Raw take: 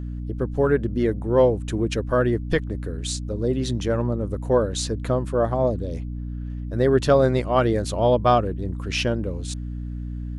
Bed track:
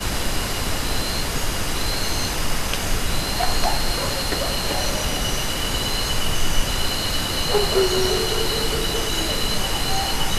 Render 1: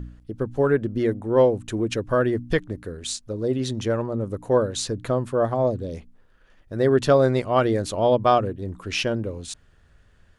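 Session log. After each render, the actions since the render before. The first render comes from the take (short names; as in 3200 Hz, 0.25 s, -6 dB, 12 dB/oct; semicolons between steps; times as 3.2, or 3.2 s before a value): de-hum 60 Hz, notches 5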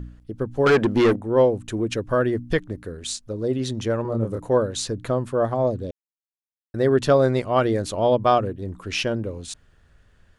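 0.66–1.16 overdrive pedal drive 25 dB, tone 5000 Hz, clips at -9 dBFS; 4.02–4.47 doubler 27 ms -2 dB; 5.91–6.74 mute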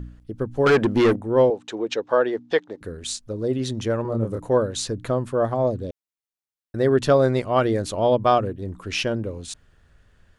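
1.5–2.81 speaker cabinet 370–6700 Hz, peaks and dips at 470 Hz +5 dB, 840 Hz +9 dB, 3700 Hz +5 dB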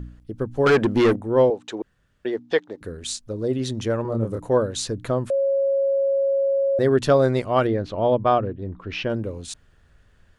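1.82–2.25 room tone; 5.3–6.79 bleep 549 Hz -17.5 dBFS; 7.67–9.1 air absorption 250 m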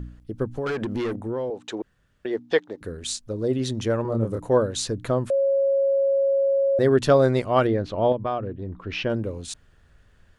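0.49–2.31 compressor 10:1, threshold -24 dBFS; 8.12–8.8 compressor 2:1, threshold -28 dBFS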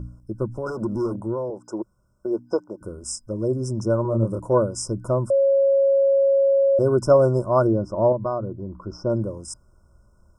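FFT band-reject 1500–5000 Hz; ripple EQ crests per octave 1.3, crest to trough 9 dB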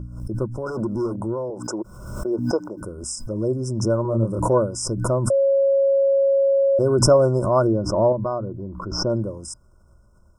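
backwards sustainer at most 53 dB/s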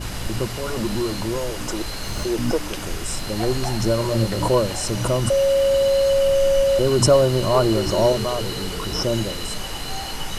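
add bed track -7 dB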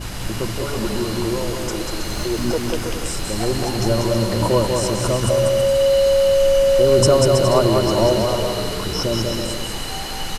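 bouncing-ball echo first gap 0.19 s, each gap 0.7×, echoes 5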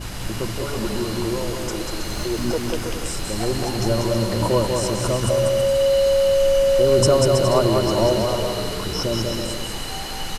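gain -2 dB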